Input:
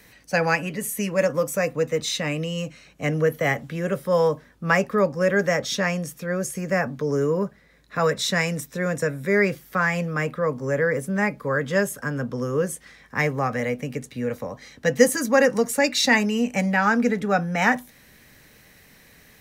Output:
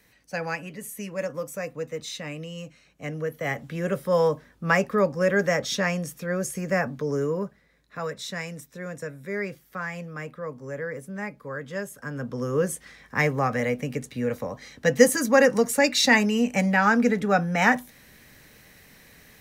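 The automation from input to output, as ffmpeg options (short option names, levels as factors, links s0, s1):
-af "volume=2.82,afade=t=in:st=3.34:d=0.49:silence=0.421697,afade=t=out:st=6.76:d=1.3:silence=0.354813,afade=t=in:st=11.91:d=0.75:silence=0.298538"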